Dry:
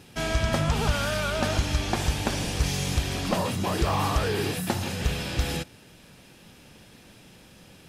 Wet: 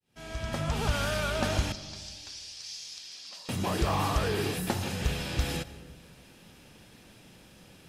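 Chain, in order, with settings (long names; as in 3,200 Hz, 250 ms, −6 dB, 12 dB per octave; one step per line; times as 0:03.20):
fade in at the beginning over 0.97 s
0:01.72–0:03.49: resonant band-pass 5,000 Hz, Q 3.2
comb and all-pass reverb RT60 1.4 s, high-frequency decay 0.25×, pre-delay 110 ms, DRR 15.5 dB
level −3 dB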